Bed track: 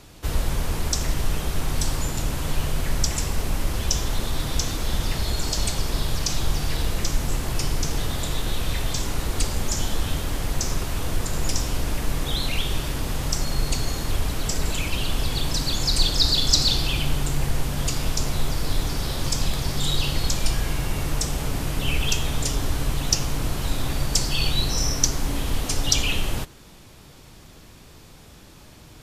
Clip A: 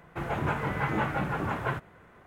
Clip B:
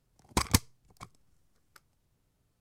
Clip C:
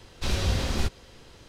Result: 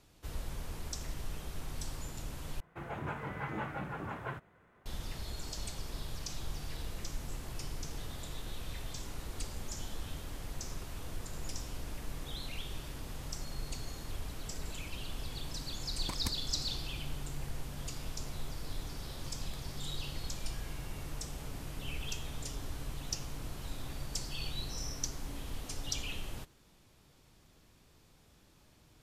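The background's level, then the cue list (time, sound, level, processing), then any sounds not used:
bed track −16.5 dB
0:02.60: overwrite with A −10 dB
0:15.72: mix in B −14 dB
not used: C

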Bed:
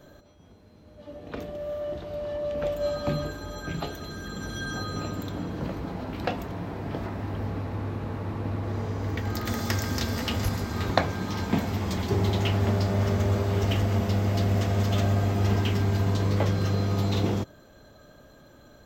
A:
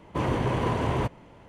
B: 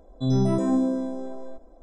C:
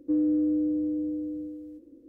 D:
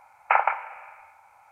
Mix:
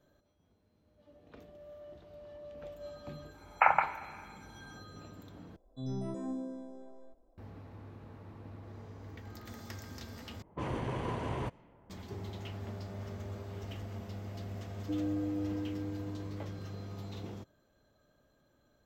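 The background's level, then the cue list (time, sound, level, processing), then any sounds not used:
bed −18 dB
0:03.31: mix in D −4 dB, fades 0.10 s
0:05.56: overwrite with B −16 dB
0:10.42: overwrite with A −10 dB + low-pass that shuts in the quiet parts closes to 940 Hz, open at −24 dBFS
0:14.80: mix in C −11 dB + parametric band 600 Hz +9 dB 0.5 octaves

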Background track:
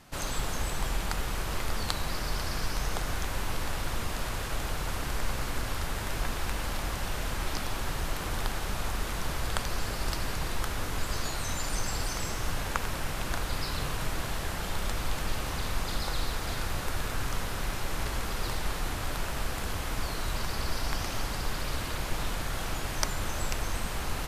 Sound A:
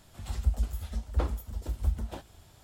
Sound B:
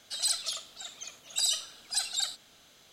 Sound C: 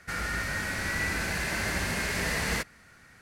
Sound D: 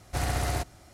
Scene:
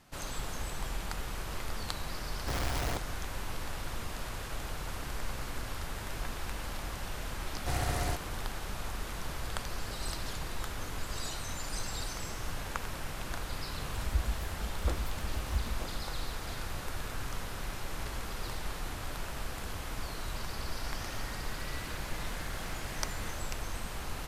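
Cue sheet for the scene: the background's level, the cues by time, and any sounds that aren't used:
background track −6 dB
0:02.34: mix in D −3 dB + comparator with hysteresis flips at −38 dBFS
0:07.53: mix in D −4 dB
0:09.80: mix in B −12 dB + brickwall limiter −22.5 dBFS
0:13.68: mix in A −4.5 dB
0:20.73: mix in C −17.5 dB

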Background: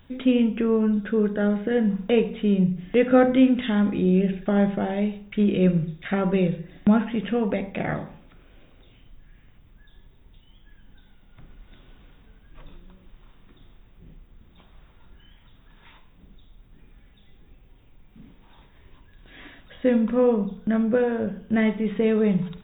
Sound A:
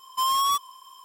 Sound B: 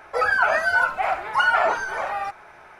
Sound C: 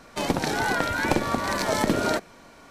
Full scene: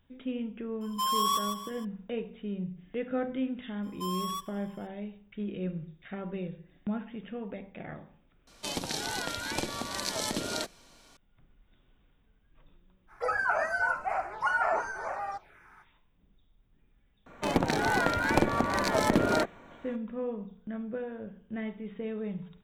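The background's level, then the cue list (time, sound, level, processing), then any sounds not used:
background −15 dB
0:00.81: mix in A −5.5 dB + feedback echo at a low word length 155 ms, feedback 35%, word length 10 bits, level −6 dB
0:03.83: mix in A −13 dB + repeating echo 95 ms, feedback 48%, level −22 dB
0:08.47: mix in C −11.5 dB + flat-topped bell 5,800 Hz +10.5 dB 2.4 octaves
0:13.07: mix in B −7 dB, fades 0.05 s + phaser swept by the level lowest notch 450 Hz, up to 3,500 Hz, full sweep at −23 dBFS
0:17.26: mix in C −1.5 dB + adaptive Wiener filter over 9 samples

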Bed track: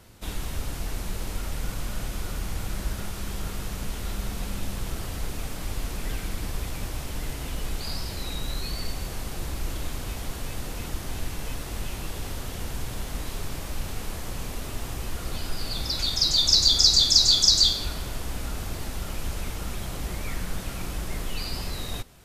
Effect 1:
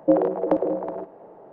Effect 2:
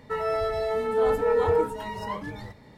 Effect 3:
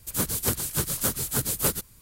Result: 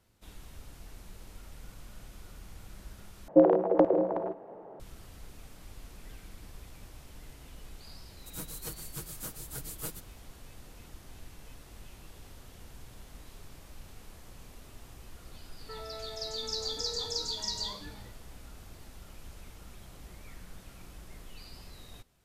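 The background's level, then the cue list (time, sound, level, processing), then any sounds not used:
bed track −17 dB
0:03.28: overwrite with 1 −1.5 dB
0:08.19: mix in 3 −17.5 dB + comb filter 6.3 ms, depth 86%
0:15.59: mix in 2 −12 dB + brickwall limiter −24 dBFS

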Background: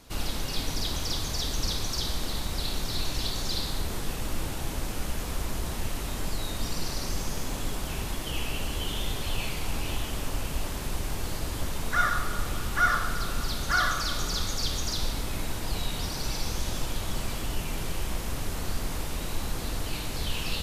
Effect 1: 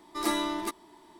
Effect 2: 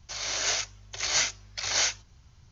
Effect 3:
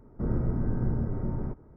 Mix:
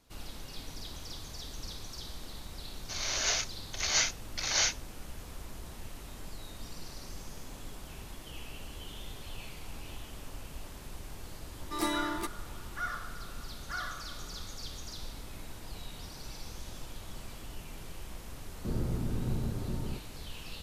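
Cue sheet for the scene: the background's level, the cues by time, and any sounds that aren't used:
background −13 dB
0:02.80: mix in 2 −2.5 dB
0:11.56: mix in 1 −3.5 dB
0:18.45: mix in 3 −5 dB

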